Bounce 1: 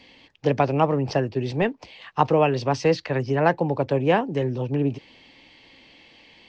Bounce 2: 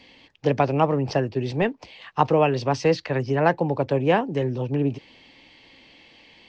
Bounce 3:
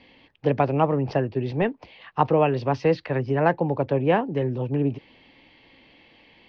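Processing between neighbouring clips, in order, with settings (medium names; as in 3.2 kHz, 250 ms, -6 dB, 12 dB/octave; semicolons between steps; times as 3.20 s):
no audible change
distance through air 230 m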